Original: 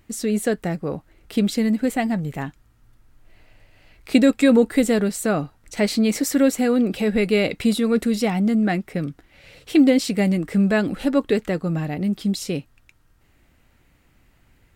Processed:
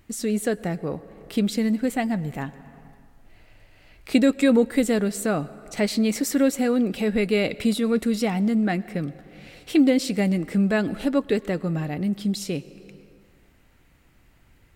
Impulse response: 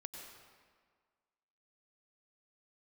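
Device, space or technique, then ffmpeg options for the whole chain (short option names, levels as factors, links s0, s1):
ducked reverb: -filter_complex "[0:a]asplit=3[s0][s1][s2];[1:a]atrim=start_sample=2205[s3];[s1][s3]afir=irnorm=-1:irlink=0[s4];[s2]apad=whole_len=650630[s5];[s4][s5]sidechaincompress=threshold=0.0224:ratio=3:attack=5.3:release=418,volume=0.944[s6];[s0][s6]amix=inputs=2:normalize=0,volume=0.668"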